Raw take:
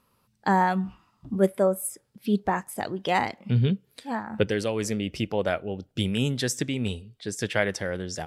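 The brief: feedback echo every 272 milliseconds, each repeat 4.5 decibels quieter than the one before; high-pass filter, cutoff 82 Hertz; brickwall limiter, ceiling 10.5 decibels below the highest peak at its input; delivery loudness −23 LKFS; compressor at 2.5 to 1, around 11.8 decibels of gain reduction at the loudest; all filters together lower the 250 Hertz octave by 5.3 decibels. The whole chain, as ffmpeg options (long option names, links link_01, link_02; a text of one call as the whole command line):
ffmpeg -i in.wav -af "highpass=82,equalizer=frequency=250:width_type=o:gain=-7.5,acompressor=threshold=-37dB:ratio=2.5,alimiter=level_in=4dB:limit=-24dB:level=0:latency=1,volume=-4dB,aecho=1:1:272|544|816|1088|1360|1632|1904|2176|2448:0.596|0.357|0.214|0.129|0.0772|0.0463|0.0278|0.0167|0.01,volume=15.5dB" out.wav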